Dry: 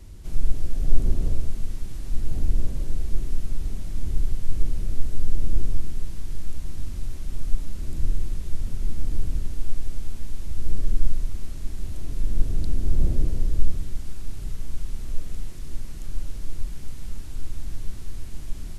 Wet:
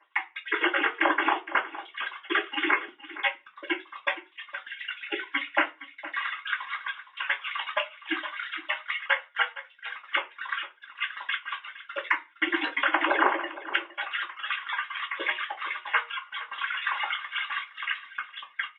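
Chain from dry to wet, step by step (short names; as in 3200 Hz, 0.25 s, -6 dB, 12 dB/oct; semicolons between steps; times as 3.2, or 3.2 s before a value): sine-wave speech; spectral gate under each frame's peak -15 dB weak; steep high-pass 310 Hz 96 dB/oct; compressor 10:1, threshold -36 dBFS, peak gain reduction 26.5 dB; gate -43 dBFS, range -28 dB; echo 0.464 s -15.5 dB; reverb RT60 0.25 s, pre-delay 3 ms, DRR -9.5 dB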